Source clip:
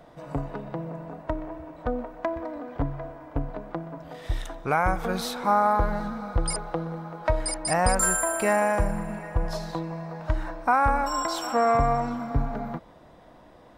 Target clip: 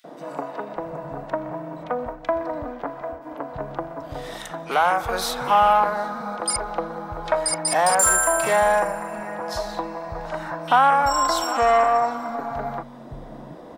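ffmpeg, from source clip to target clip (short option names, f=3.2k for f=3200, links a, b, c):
-filter_complex "[0:a]asplit=3[a][b][c];[a]afade=t=out:st=1.83:d=0.02[d];[b]agate=range=-33dB:threshold=-35dB:ratio=3:detection=peak,afade=t=in:st=1.83:d=0.02,afade=t=out:st=3.21:d=0.02[e];[c]afade=t=in:st=3.21:d=0.02[f];[d][e][f]amix=inputs=3:normalize=0,equalizer=f=230:w=0.45:g=8.5,aeval=exprs='0.668*(cos(1*acos(clip(val(0)/0.668,-1,1)))-cos(1*PI/2))+0.168*(cos(5*acos(clip(val(0)/0.668,-1,1)))-cos(5*PI/2))':c=same,acrossover=split=610|900[g][h][i];[g]acompressor=threshold=-35dB:ratio=6[j];[j][h][i]amix=inputs=3:normalize=0,acrossover=split=190|2500[k][l][m];[l]adelay=40[n];[k]adelay=760[o];[o][n][m]amix=inputs=3:normalize=0"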